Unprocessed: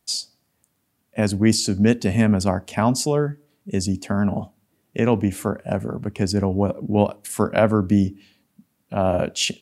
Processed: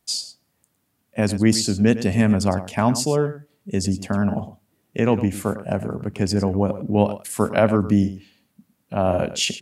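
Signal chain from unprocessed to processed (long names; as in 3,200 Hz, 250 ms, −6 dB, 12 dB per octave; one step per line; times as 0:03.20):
single-tap delay 107 ms −13.5 dB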